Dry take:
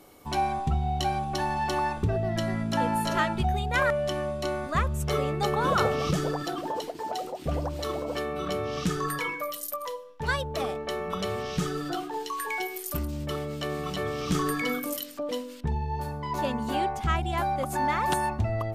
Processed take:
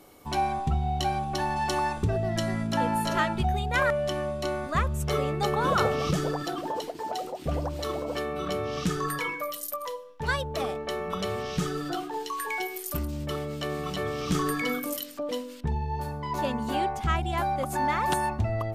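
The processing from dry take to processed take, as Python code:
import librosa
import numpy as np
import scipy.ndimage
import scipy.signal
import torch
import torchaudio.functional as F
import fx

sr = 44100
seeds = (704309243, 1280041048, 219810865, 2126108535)

y = fx.peak_eq(x, sr, hz=7800.0, db=5.5, octaves=1.5, at=(1.56, 2.67))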